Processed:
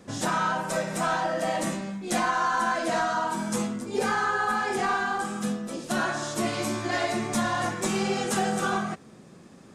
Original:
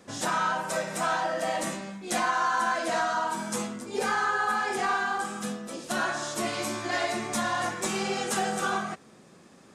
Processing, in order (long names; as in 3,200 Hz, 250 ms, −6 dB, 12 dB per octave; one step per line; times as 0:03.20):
low-shelf EQ 310 Hz +8.5 dB